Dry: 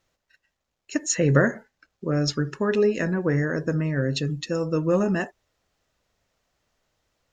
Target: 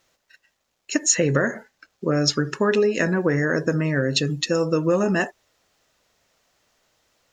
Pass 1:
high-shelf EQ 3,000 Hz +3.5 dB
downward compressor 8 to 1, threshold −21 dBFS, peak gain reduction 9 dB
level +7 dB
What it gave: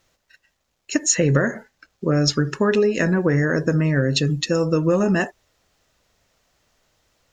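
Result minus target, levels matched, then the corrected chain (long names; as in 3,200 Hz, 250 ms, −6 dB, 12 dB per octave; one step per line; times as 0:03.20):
125 Hz band +3.0 dB
high-shelf EQ 3,000 Hz +3.5 dB
downward compressor 8 to 1, threshold −21 dBFS, peak gain reduction 9 dB
low-shelf EQ 130 Hz −11 dB
level +7 dB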